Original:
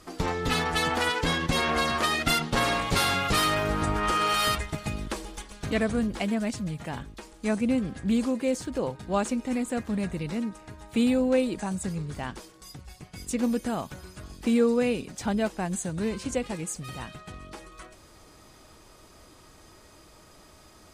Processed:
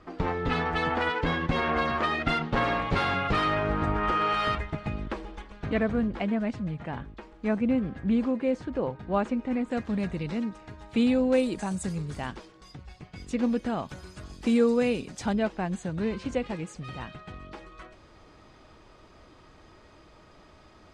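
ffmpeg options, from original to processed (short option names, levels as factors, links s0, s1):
-af "asetnsamples=n=441:p=0,asendcmd='9.71 lowpass f 4700;11.33 lowpass f 9600;12.35 lowpass f 3800;13.89 lowpass f 7400;15.33 lowpass f 3500',lowpass=2300"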